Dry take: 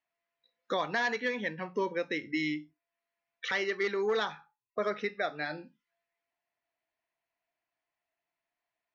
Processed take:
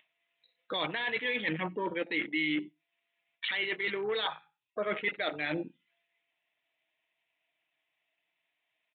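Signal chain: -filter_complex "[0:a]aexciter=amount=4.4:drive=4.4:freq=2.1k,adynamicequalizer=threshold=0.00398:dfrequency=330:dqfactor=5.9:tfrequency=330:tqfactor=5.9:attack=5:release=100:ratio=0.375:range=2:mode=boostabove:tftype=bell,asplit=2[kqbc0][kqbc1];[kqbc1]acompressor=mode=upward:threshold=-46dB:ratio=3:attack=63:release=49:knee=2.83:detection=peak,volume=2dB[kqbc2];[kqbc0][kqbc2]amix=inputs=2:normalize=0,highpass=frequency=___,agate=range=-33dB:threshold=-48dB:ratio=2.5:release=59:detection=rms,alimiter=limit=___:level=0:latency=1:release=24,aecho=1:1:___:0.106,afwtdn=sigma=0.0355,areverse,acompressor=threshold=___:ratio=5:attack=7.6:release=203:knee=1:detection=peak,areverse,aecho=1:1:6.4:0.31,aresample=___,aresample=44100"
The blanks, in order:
110, -9dB, 94, -30dB, 8000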